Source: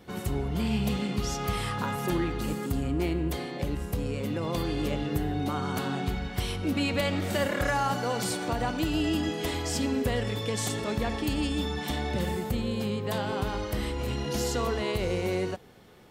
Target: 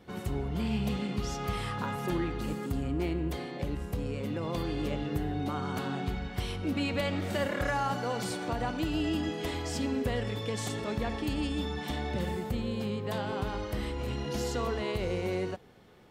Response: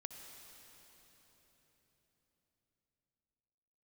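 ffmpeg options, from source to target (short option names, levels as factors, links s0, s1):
-af "highshelf=f=6000:g=-7,volume=0.708"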